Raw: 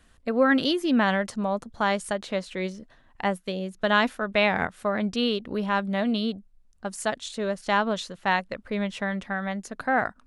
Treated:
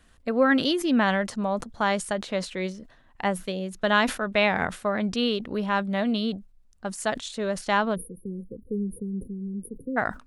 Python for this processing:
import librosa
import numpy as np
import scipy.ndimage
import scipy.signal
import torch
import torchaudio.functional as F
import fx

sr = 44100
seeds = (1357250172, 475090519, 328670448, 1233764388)

y = fx.brickwall_bandstop(x, sr, low_hz=520.0, high_hz=9200.0, at=(7.94, 9.96), fade=0.02)
y = fx.sustainer(y, sr, db_per_s=150.0)